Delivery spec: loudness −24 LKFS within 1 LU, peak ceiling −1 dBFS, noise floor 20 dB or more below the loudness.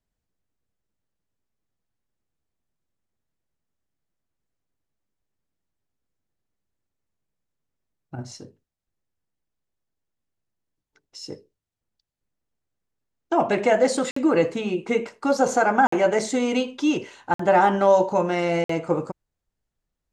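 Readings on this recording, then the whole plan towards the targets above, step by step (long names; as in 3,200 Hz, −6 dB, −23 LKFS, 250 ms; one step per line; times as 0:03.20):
number of dropouts 4; longest dropout 54 ms; integrated loudness −21.5 LKFS; sample peak −6.5 dBFS; target loudness −24.0 LKFS
→ repair the gap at 0:14.11/0:15.87/0:17.34/0:18.64, 54 ms
level −2.5 dB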